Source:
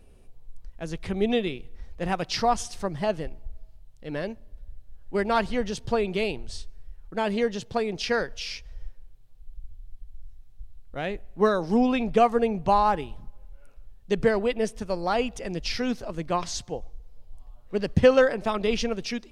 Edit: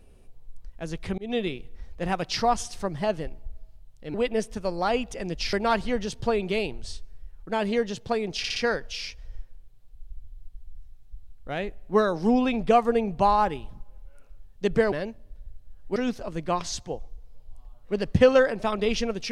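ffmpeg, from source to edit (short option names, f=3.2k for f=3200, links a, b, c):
-filter_complex "[0:a]asplit=9[a][b][c][d][e][f][g][h][i];[a]atrim=end=1.18,asetpts=PTS-STARTPTS,afade=t=out:st=1.176:d=0.004:c=hsin[j];[b]atrim=start=1.18:end=4.142,asetpts=PTS-STARTPTS,afade=t=in:d=0.25[k];[c]atrim=start=14.388:end=15.782[l];[d]atrim=start=5.178:end=8.092[m];[e]atrim=start=8.028:end=8.092[n];[f]atrim=start=8.028:end=8.092[o];[g]atrim=start=8.028:end=14.392[p];[h]atrim=start=4.138:end=5.182[q];[i]atrim=start=15.778[r];[j][k]concat=n=2:v=0:a=1[s];[s][l]acrossfade=d=0.004:c1=hsin:c2=hsin[t];[t][m]acrossfade=d=0.004:c1=hsin:c2=hsin[u];[u][n]acrossfade=d=0.004:c1=hsin:c2=hsin[v];[v][o]acrossfade=d=0.004:c1=hsin:c2=hsin[w];[w][p]acrossfade=d=0.004:c1=hsin:c2=hsin[x];[x][q]acrossfade=d=0.004:c1=hsin:c2=hsin[y];[y][r]acrossfade=d=0.004:c1=hsin:c2=hsin"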